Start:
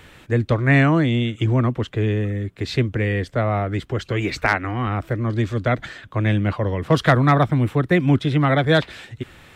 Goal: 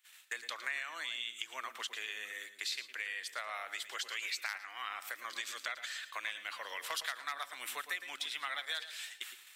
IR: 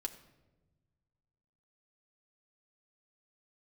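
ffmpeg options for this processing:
-filter_complex "[0:a]highpass=1k,agate=range=-30dB:threshold=-47dB:ratio=16:detection=peak,aderivative,acompressor=threshold=-49dB:ratio=5,asplit=2[a][b];[1:a]atrim=start_sample=2205,lowshelf=f=370:g=11,adelay=110[c];[b][c]afir=irnorm=-1:irlink=0,volume=-11.5dB[d];[a][d]amix=inputs=2:normalize=0,volume=11.5dB"

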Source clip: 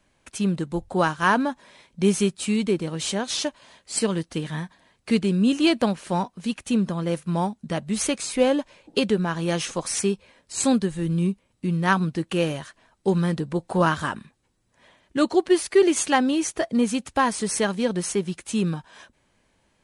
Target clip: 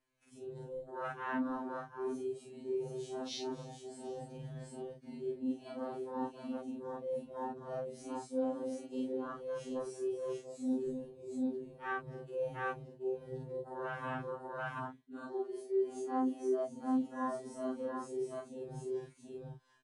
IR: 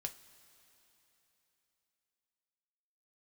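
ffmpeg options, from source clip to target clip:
-af "afftfilt=real='re':imag='-im':win_size=4096:overlap=0.75,adynamicequalizer=threshold=0.00398:dfrequency=2600:dqfactor=1.2:tfrequency=2600:tqfactor=1.2:attack=5:release=100:ratio=0.375:range=1.5:mode=cutabove:tftype=bell,aecho=1:1:255|732:0.158|0.398,areverse,acompressor=threshold=-37dB:ratio=16,areverse,afwtdn=0.00631,afftfilt=real='re*2.45*eq(mod(b,6),0)':imag='im*2.45*eq(mod(b,6),0)':win_size=2048:overlap=0.75,volume=5dB"

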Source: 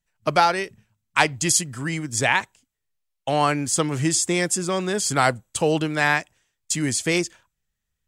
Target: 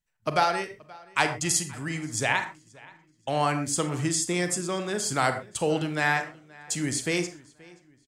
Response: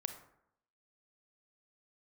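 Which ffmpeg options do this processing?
-filter_complex "[0:a]asplit=2[a][b];[b]adelay=527,lowpass=f=4.6k:p=1,volume=-23dB,asplit=2[c][d];[d]adelay=527,lowpass=f=4.6k:p=1,volume=0.45,asplit=2[e][f];[f]adelay=527,lowpass=f=4.6k:p=1,volume=0.45[g];[a][c][e][g]amix=inputs=4:normalize=0[h];[1:a]atrim=start_sample=2205,atrim=end_sample=6174[i];[h][i]afir=irnorm=-1:irlink=0,volume=-4dB"

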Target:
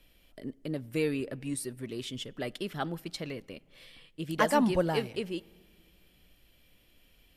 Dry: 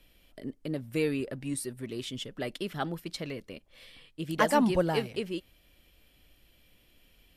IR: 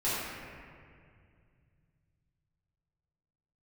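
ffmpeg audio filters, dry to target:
-filter_complex "[0:a]asplit=2[a][b];[1:a]atrim=start_sample=2205,asetrate=52920,aresample=44100[c];[b][c]afir=irnorm=-1:irlink=0,volume=-32.5dB[d];[a][d]amix=inputs=2:normalize=0,volume=-1dB"

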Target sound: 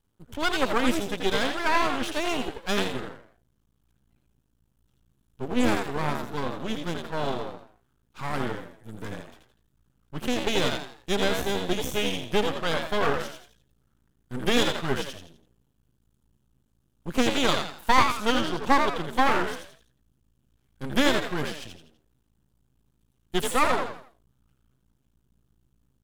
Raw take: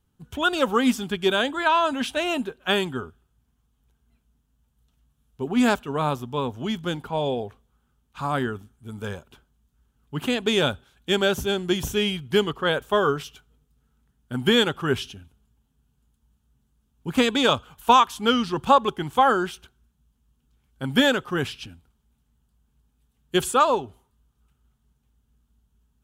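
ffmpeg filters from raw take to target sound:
-filter_complex "[0:a]asplit=5[a][b][c][d][e];[b]adelay=83,afreqshift=73,volume=-5.5dB[f];[c]adelay=166,afreqshift=146,volume=-14.4dB[g];[d]adelay=249,afreqshift=219,volume=-23.2dB[h];[e]adelay=332,afreqshift=292,volume=-32.1dB[i];[a][f][g][h][i]amix=inputs=5:normalize=0,aeval=exprs='max(val(0),0)':c=same"

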